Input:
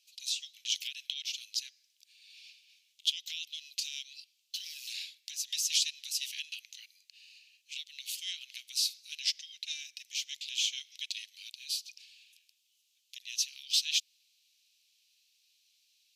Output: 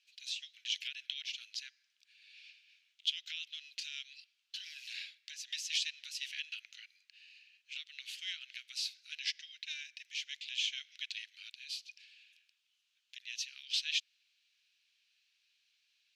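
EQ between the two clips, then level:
resonant band-pass 1,500 Hz, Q 3.2
+12.0 dB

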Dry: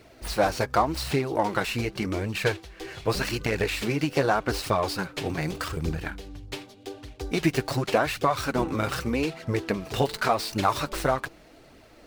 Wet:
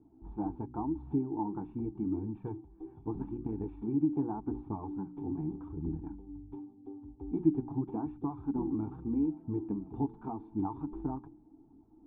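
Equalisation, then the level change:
formant resonators in series u
mains-hum notches 60/120/180/240/300/360 Hz
phaser with its sweep stopped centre 2,100 Hz, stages 6
+5.5 dB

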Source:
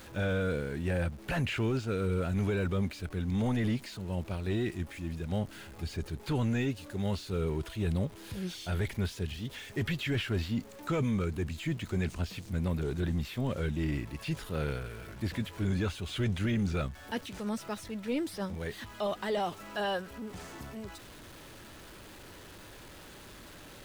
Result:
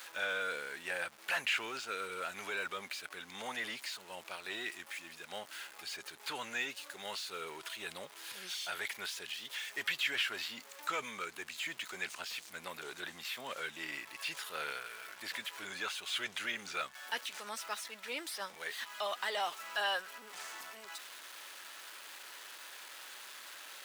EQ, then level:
high-pass filter 1,100 Hz 12 dB per octave
+4.0 dB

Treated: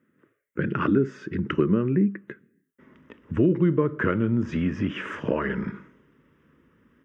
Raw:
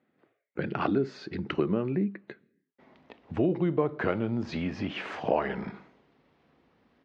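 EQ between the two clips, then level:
parametric band 2,300 Hz −7.5 dB 0.47 octaves
phaser with its sweep stopped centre 1,800 Hz, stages 4
+8.0 dB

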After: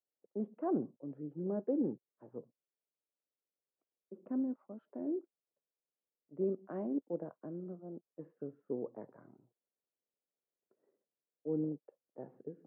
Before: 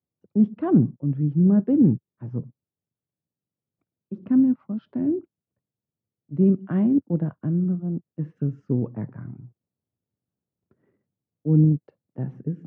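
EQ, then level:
four-pole ladder band-pass 620 Hz, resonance 35%
+3.5 dB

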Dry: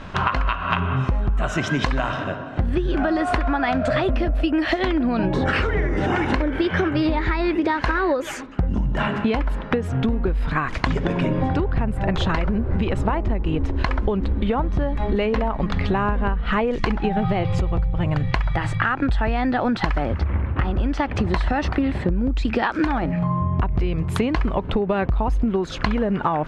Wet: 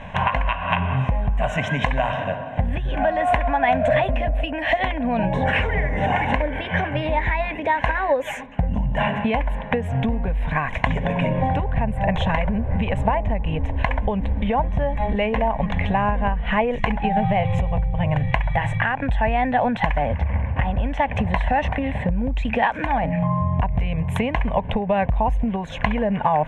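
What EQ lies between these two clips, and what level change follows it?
low-shelf EQ 120 Hz −7.5 dB
high-shelf EQ 3,700 Hz −8 dB
phaser with its sweep stopped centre 1,300 Hz, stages 6
+6.0 dB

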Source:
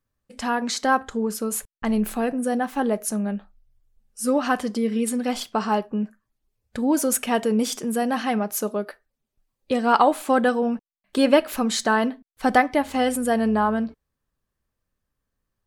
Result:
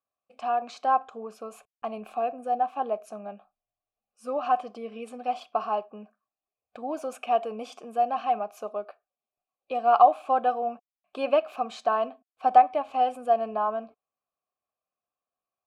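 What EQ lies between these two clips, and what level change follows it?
formant filter a
+5.0 dB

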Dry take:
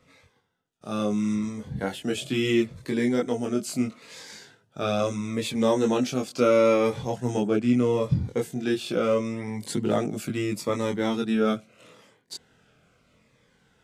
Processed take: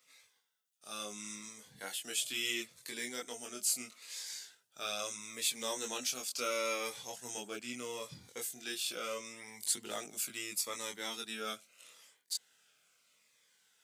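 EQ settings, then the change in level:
first difference
+4.0 dB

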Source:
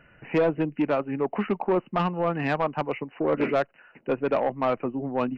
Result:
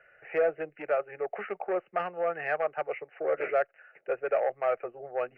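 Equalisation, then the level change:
three-way crossover with the lows and the highs turned down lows −20 dB, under 370 Hz, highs −22 dB, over 3,600 Hz
phaser with its sweep stopped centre 990 Hz, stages 6
0.0 dB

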